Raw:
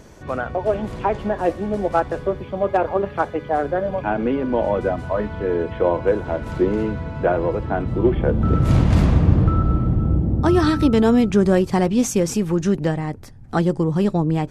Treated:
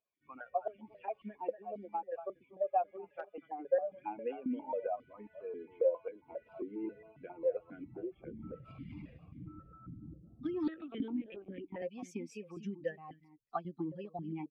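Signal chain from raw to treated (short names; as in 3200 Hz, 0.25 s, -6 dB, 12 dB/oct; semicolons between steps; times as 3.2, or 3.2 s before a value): per-bin expansion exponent 2; 6.46–7.12 bell 570 Hz +6 dB 1.7 oct; compressor 6:1, threshold -27 dBFS, peak gain reduction 14.5 dB; echo 0.239 s -15.5 dB; 10.68–11.82 LPC vocoder at 8 kHz pitch kept; hard clip -18 dBFS, distortion -33 dB; vowel sequencer 7.4 Hz; gain +4 dB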